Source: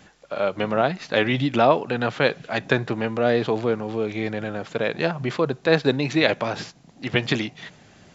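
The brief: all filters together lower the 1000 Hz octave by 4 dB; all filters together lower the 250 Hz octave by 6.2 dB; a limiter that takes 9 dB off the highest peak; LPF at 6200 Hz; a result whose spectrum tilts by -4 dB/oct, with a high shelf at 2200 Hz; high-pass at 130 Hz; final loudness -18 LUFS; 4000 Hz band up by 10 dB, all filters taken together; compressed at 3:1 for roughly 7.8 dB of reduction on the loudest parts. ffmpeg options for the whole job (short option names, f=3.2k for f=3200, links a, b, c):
-af "highpass=130,lowpass=6.2k,equalizer=f=250:t=o:g=-7.5,equalizer=f=1k:t=o:g=-7,highshelf=f=2.2k:g=4.5,equalizer=f=4k:t=o:g=9,acompressor=threshold=-22dB:ratio=3,volume=10.5dB,alimiter=limit=-4.5dB:level=0:latency=1"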